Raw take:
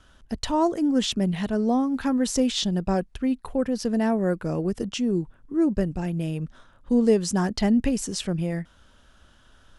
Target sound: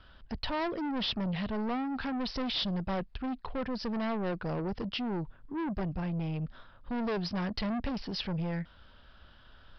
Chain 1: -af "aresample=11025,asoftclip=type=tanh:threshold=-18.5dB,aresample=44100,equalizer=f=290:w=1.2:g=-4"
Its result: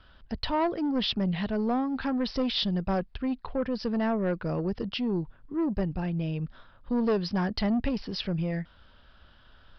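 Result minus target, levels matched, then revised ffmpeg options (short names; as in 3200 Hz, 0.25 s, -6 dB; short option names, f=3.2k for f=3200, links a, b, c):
soft clip: distortion -8 dB
-af "aresample=11025,asoftclip=type=tanh:threshold=-28dB,aresample=44100,equalizer=f=290:w=1.2:g=-4"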